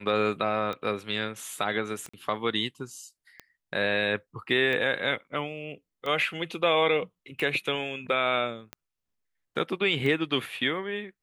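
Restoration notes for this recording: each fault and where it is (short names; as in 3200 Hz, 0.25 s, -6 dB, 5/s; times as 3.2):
tick 45 rpm -21 dBFS
2.09–2.13 gap 45 ms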